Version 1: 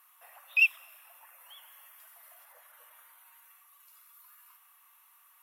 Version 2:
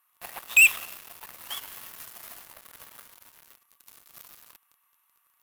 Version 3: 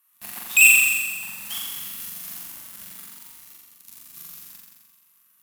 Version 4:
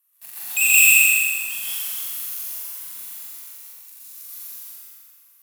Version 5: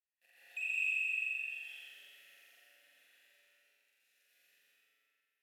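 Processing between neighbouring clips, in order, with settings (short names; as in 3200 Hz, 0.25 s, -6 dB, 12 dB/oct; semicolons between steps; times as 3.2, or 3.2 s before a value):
sample leveller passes 5; gain +1.5 dB
EQ curve 120 Hz 0 dB, 190 Hz +10 dB, 510 Hz -9 dB, 7400 Hz +5 dB; on a send: flutter echo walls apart 7.4 m, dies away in 1.4 s
HPF 230 Hz 12 dB/oct; tilt +2.5 dB/oct; plate-style reverb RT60 1.9 s, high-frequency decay 0.7×, pre-delay 0.11 s, DRR -8.5 dB; gain -11.5 dB
compressor 3:1, threshold -21 dBFS, peak gain reduction 9 dB; vowel filter e; spring tank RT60 1.1 s, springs 50 ms, chirp 55 ms, DRR -2.5 dB; gain -6 dB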